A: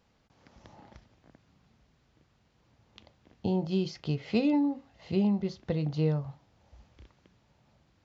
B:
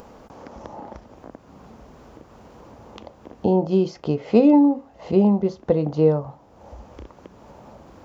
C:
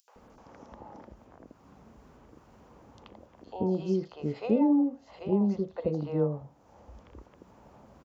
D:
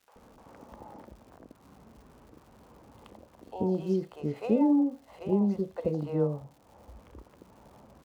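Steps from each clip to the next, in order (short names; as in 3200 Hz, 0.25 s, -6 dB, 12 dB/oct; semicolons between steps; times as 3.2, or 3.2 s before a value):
graphic EQ 125/250/500/1000/2000/4000 Hz -6/+4/+7/+6/-5/-8 dB; in parallel at +1.5 dB: upward compressor, threshold -32 dBFS
three bands offset in time highs, mids, lows 80/160 ms, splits 600/4100 Hz; gain -8.5 dB
median filter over 9 samples; crackle 220/s -51 dBFS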